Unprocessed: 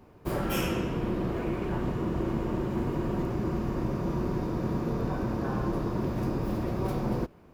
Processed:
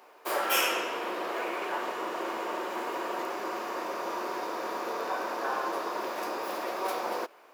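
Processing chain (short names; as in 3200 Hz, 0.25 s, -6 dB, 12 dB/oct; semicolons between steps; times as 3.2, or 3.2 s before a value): Bessel high-pass 750 Hz, order 4; gain +8.5 dB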